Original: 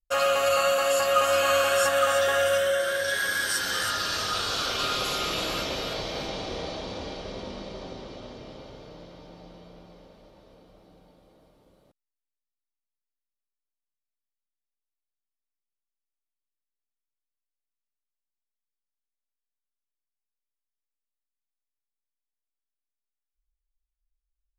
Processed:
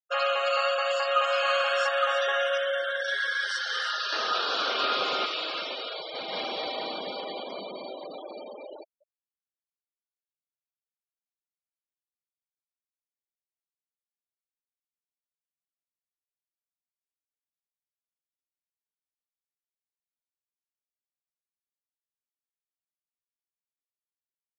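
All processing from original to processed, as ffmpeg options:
ffmpeg -i in.wav -filter_complex "[0:a]asettb=1/sr,asplit=3[link_01][link_02][link_03];[link_01]atrim=end=4.124[link_04];[link_02]atrim=start=4.12:end=5.26,asetpts=PTS-STARTPTS,afade=type=in:duration=0.004:curve=qsin,afade=type=out:start_time=1.136:duration=0.004:curve=qsin,acrossover=split=8800[link_05][link_06];[link_06]acompressor=threshold=-49dB:ratio=4:attack=1:release=60[link_07];[link_05][link_07]amix=inputs=2:normalize=0,equalizer=frequency=390:width=0.32:gain=7.5[link_08];[link_03]atrim=start=5.256[link_09];[link_04][link_08]acrossfade=duration=0.004:curve1=hsin:curve2=qsin[link_10];[link_10][link_09]acrossfade=duration=0.004:curve1=qsin:curve2=hsin,asettb=1/sr,asplit=3[link_11][link_12][link_13];[link_11]atrim=end=6.144[link_14];[link_12]atrim=start=6.14:end=8.84,asetpts=PTS-STARTPTS,afade=type=in:duration=0.004:curve=qsin,afade=type=out:start_time=2.696:duration=0.004:curve=qsin,aeval=exprs='val(0)+0.5*0.0141*sgn(val(0))':channel_layout=same,aecho=1:1:82|141|185|233|493:0.224|0.501|0.631|0.631|0.251,atrim=end_sample=119070[link_15];[link_13]atrim=start=8.836[link_16];[link_14][link_15]acrossfade=duration=0.004:curve1=hsin:curve2=qsin[link_17];[link_17][link_16]acrossfade=duration=0.004:curve1=qsin:curve2=hsin,highpass=frequency=750:poles=1,afftfilt=real='re*gte(hypot(re,im),0.0251)':imag='im*gte(hypot(re,im),0.0251)':win_size=1024:overlap=0.75,lowpass=frequency=4900:width=0.5412,lowpass=frequency=4900:width=1.3066" out.wav

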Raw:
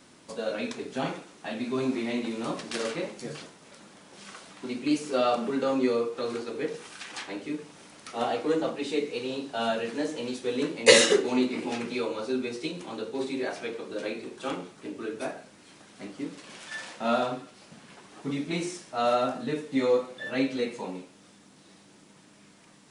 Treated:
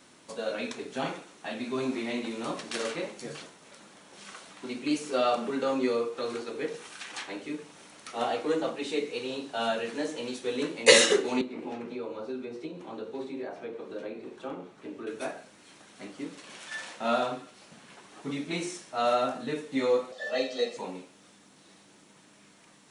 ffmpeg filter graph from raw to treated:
ffmpeg -i in.wav -filter_complex "[0:a]asettb=1/sr,asplit=3[link_01][link_02][link_03];[link_01]atrim=end=11.414[link_04];[link_02]atrim=start=11.41:end=15.07,asetpts=PTS-STARTPTS,afade=type=in:duration=0.004:curve=qsin,afade=type=out:start_time=3.656:duration=0.004:curve=qsin,aemphasis=mode=reproduction:type=50kf,acrossover=split=230|1100[link_05][link_06][link_07];[link_05]acompressor=threshold=-42dB:ratio=4[link_08];[link_06]acompressor=threshold=-33dB:ratio=4[link_09];[link_07]acompressor=threshold=-53dB:ratio=4[link_10];[link_08][link_09][link_10]amix=inputs=3:normalize=0[link_11];[link_03]atrim=start=15.066[link_12];[link_04][link_11]acrossfade=duration=0.004:curve1=hsin:curve2=qsin[link_13];[link_13][link_12]acrossfade=duration=0.004:curve1=qsin:curve2=hsin,asettb=1/sr,asplit=3[link_14][link_15][link_16];[link_14]atrim=end=20.124[link_17];[link_15]atrim=start=20.12:end=20.77,asetpts=PTS-STARTPTS,afade=type=in:duration=0.004:curve=qsin,afade=type=out:start_time=0.646:duration=0.004:curve=qsin,highpass=frequency=230:width=0.5412,highpass=frequency=230:width=1.3066,equalizer=frequency=700:width_type=q:width=4:gain=3,equalizer=frequency=1300:width_type=q:width=4:gain=-8,equalizer=frequency=2300:width_type=q:width=4:gain=-9,equalizer=frequency=4800:width_type=q:width=4:gain=8,lowpass=frequency=8300:width=0.5412,lowpass=frequency=8300:width=1.3066,aecho=1:1:1.6:0.92,atrim=end_sample=28665[link_18];[link_16]atrim=start=20.766[link_19];[link_17][link_18]acrossfade=duration=0.004:curve1=hsin:curve2=qsin[link_20];[link_20][link_19]acrossfade=duration=0.004:curve1=qsin:curve2=hsin,lowshelf=frequency=310:gain=-5.5,bandreject=frequency=4900:width=17" out.wav

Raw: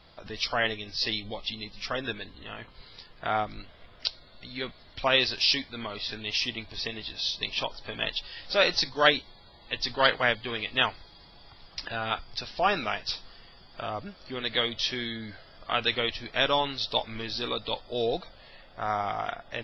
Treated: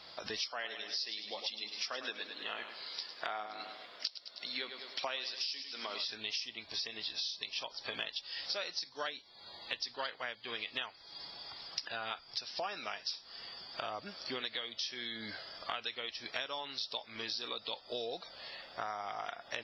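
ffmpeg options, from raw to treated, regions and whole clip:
ffmpeg -i in.wav -filter_complex "[0:a]asettb=1/sr,asplit=3[link_01][link_02][link_03];[link_01]atrim=end=0.494[link_04];[link_02]atrim=start=0.49:end=6.05,asetpts=PTS-STARTPTS,afade=type=in:duration=0.004:curve=qsin,afade=type=out:start_time=5.556:duration=0.004:curve=qsin,highpass=260,aecho=1:1:103|206|309|412:0.282|0.121|0.0521|0.0224,atrim=end_sample=245196[link_05];[link_03]atrim=start=6.046[link_06];[link_04][link_05]acrossfade=duration=0.004:curve1=hsin:curve2=qsin[link_07];[link_07][link_06]acrossfade=duration=0.004:curve1=qsin:curve2=hsin,highpass=frequency=520:poles=1,equalizer=frequency=5400:width=2.1:gain=9,acompressor=threshold=-39dB:ratio=16,volume=3.5dB" out.wav

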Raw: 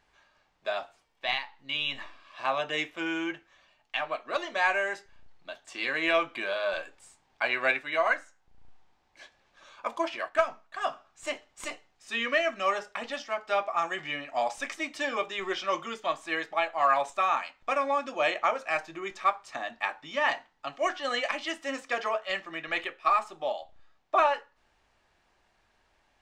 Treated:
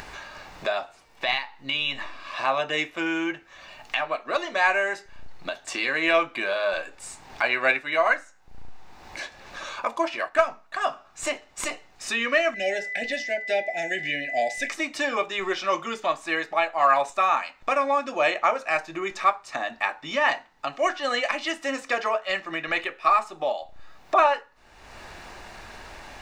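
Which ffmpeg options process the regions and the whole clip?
ffmpeg -i in.wav -filter_complex "[0:a]asettb=1/sr,asplit=3[link_01][link_02][link_03];[link_01]atrim=end=12.544[link_04];[link_02]atrim=start=12.54:end=14.7,asetpts=PTS-STARTPTS,afade=type=in:duration=0.004:curve=qsin,afade=type=out:start_time=2.156:duration=0.004:curve=qsin,aeval=exprs='val(0)+0.0126*sin(2*PI*2000*n/s)':channel_layout=same,asuperstop=centerf=1100:order=12:qfactor=1.4[link_05];[link_03]atrim=start=14.696[link_06];[link_04][link_05]acrossfade=duration=0.004:curve1=hsin:curve2=qsin[link_07];[link_07][link_06]acrossfade=duration=0.004:curve1=qsin:curve2=hsin,bandreject=frequency=3200:width=12,acompressor=mode=upward:threshold=-28dB:ratio=2.5,volume=4.5dB" out.wav

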